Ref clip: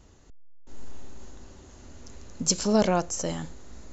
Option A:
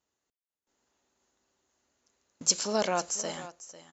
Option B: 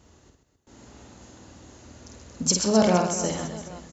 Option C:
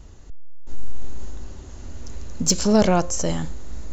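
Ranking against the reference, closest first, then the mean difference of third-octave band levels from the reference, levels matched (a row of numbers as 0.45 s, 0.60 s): C, B, A; 1.0 dB, 2.5 dB, 10.0 dB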